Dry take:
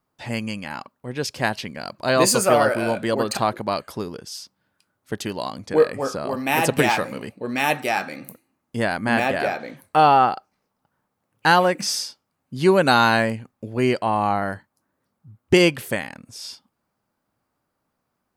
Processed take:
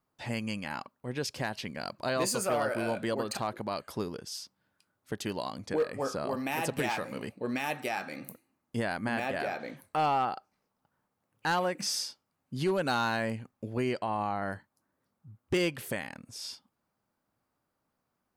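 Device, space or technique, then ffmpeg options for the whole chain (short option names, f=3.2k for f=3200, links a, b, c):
clipper into limiter: -filter_complex "[0:a]asoftclip=type=hard:threshold=-9dB,alimiter=limit=-16.5dB:level=0:latency=1:release=220,asettb=1/sr,asplit=3[a][b][c];[a]atrim=end=13.924[d];[b]atrim=start=13.92:end=14.51,asetpts=PTS-STARTPTS,afade=t=in:d=0.004:c=qsin,afade=t=out:st=0.586:d=0.004:c=qsin,lowpass=8.9k[e];[c]atrim=start=14.506[f];[d][e]acrossfade=d=0.004:c1=hsin:c2=qsin[g];[g][f]acrossfade=d=0.004:c1=qsin:c2=hsin,volume=-5dB"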